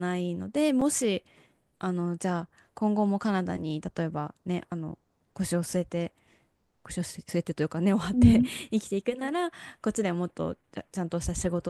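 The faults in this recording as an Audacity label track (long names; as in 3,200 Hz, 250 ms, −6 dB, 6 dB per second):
0.810000	0.820000	drop-out 5.1 ms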